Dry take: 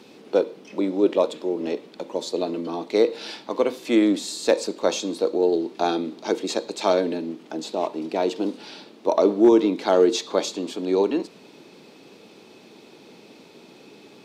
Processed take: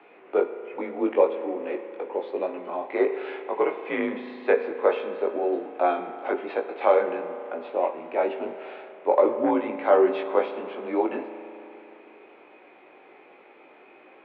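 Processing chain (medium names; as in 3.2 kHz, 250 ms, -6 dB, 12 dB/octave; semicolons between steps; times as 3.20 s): chorus 1.2 Hz, delay 18 ms, depth 2.8 ms; mistuned SSB -69 Hz 520–2500 Hz; spring tank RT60 3.2 s, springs 36 ms, chirp 75 ms, DRR 10 dB; trim +5.5 dB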